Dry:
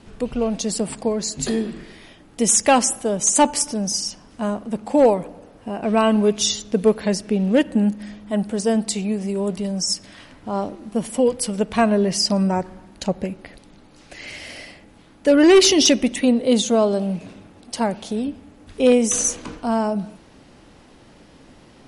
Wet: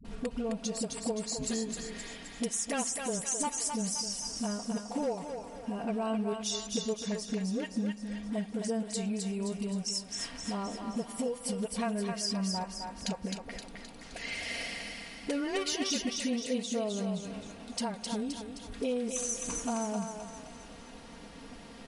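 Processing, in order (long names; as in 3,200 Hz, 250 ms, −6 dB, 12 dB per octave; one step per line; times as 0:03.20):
parametric band 340 Hz −3.5 dB 0.48 octaves
comb filter 4.3 ms, depth 60%
downward compressor 4 to 1, threshold −32 dBFS, peak gain reduction 20 dB
all-pass dispersion highs, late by 48 ms, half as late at 340 Hz
on a send: feedback echo with a high-pass in the loop 261 ms, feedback 54%, high-pass 620 Hz, level −3.5 dB
on the sum: level −2 dB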